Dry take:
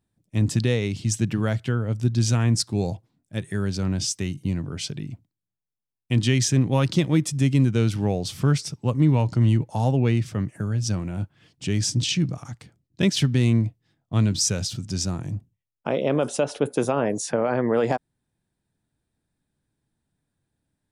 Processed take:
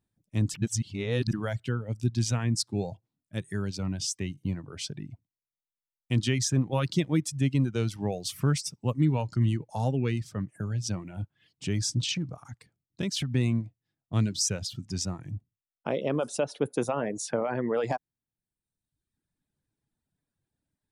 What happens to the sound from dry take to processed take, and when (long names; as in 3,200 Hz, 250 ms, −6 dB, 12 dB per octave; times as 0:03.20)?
0:00.54–0:01.33: reverse
0:08.12–0:09.13: high-shelf EQ 7,000 Hz +9.5 dB
0:12.12–0:13.32: downward compressor, threshold −21 dBFS
whole clip: reverb reduction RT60 1.1 s; level −4.5 dB